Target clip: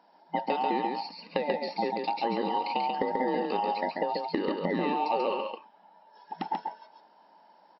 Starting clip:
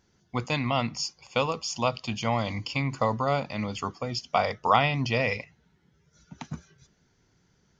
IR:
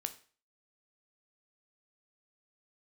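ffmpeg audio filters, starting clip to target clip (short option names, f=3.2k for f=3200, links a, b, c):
-filter_complex "[0:a]afftfilt=real='real(if(between(b,1,1008),(2*floor((b-1)/48)+1)*48-b,b),0)':imag='imag(if(between(b,1,1008),(2*floor((b-1)/48)+1)*48-b,b),0)*if(between(b,1,1008),-1,1)':win_size=2048:overlap=0.75,asplit=2[a][b];[b]asoftclip=type=tanh:threshold=-18dB,volume=-4dB[c];[a][c]amix=inputs=2:normalize=0,tiltshelf=f=1.3k:g=6,acrossover=split=1000|3300[d][e][f];[d]acompressor=threshold=-20dB:ratio=4[g];[e]acompressor=threshold=-34dB:ratio=4[h];[f]acompressor=threshold=-43dB:ratio=4[i];[g][h][i]amix=inputs=3:normalize=0,afftfilt=real='re*between(b*sr/4096,170,5600)':imag='im*between(b*sr/4096,170,5600)':win_size=4096:overlap=0.75,acompressor=threshold=-25dB:ratio=16,aecho=1:1:138:0.668,adynamicequalizer=threshold=0.00158:dfrequency=2100:dqfactor=5.7:tfrequency=2100:tqfactor=5.7:attack=5:release=100:ratio=0.375:range=3:mode=cutabove:tftype=bell"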